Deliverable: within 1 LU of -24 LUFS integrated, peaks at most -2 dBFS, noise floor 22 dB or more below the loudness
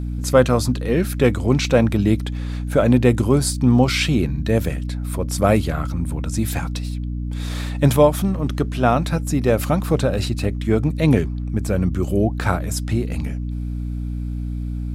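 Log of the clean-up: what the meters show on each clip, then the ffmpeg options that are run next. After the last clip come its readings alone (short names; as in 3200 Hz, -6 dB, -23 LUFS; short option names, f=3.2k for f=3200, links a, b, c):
hum 60 Hz; harmonics up to 300 Hz; hum level -23 dBFS; loudness -20.0 LUFS; peak -1.5 dBFS; loudness target -24.0 LUFS
-> -af "bandreject=f=60:t=h:w=6,bandreject=f=120:t=h:w=6,bandreject=f=180:t=h:w=6,bandreject=f=240:t=h:w=6,bandreject=f=300:t=h:w=6"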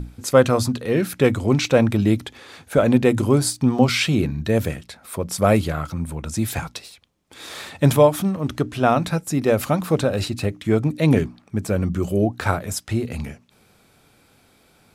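hum none; loudness -20.5 LUFS; peak -2.0 dBFS; loudness target -24.0 LUFS
-> -af "volume=-3.5dB"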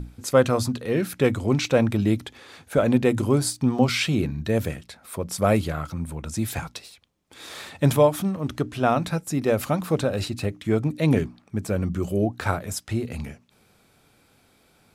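loudness -24.0 LUFS; peak -5.5 dBFS; noise floor -61 dBFS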